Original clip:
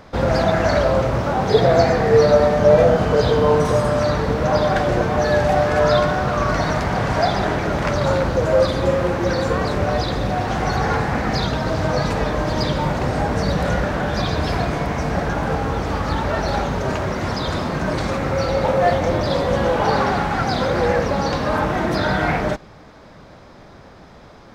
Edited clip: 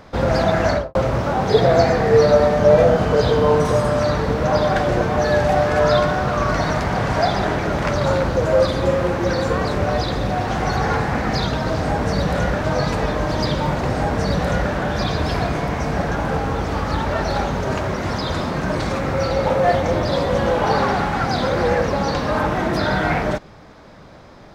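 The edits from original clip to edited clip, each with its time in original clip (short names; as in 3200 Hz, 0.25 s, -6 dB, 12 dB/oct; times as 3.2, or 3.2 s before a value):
0.68–0.95 studio fade out
13.12–13.94 copy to 11.82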